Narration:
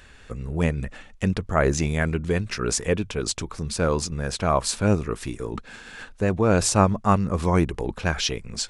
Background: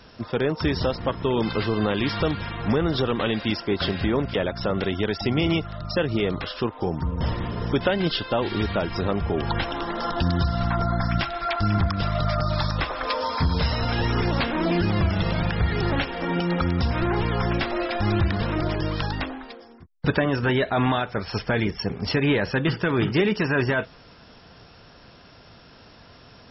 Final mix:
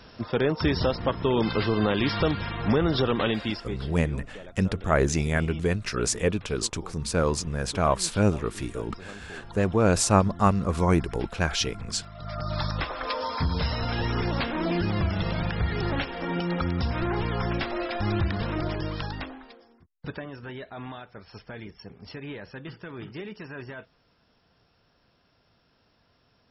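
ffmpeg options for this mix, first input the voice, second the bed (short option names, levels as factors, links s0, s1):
-filter_complex "[0:a]adelay=3350,volume=0.841[s0];[1:a]volume=5.31,afade=t=out:st=3.23:d=0.62:silence=0.11885,afade=t=in:st=12.17:d=0.45:silence=0.177828,afade=t=out:st=18.63:d=1.68:silence=0.223872[s1];[s0][s1]amix=inputs=2:normalize=0"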